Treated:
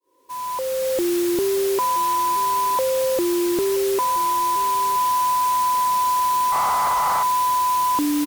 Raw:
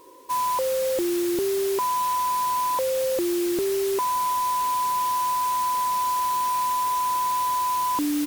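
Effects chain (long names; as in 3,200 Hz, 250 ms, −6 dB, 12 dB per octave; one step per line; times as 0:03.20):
fade in at the beginning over 1.06 s
on a send: single-tap delay 973 ms −18 dB
0:06.52–0:07.23: on the sum: highs frequency-modulated by the lows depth 0.35 ms
level +3.5 dB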